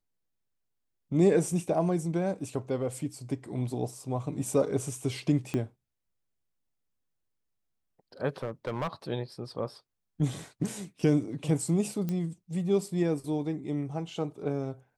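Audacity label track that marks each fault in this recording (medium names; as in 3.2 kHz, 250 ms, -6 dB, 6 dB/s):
5.540000	5.540000	pop -19 dBFS
8.430000	8.930000	clipped -27 dBFS
12.090000	12.090000	pop -20 dBFS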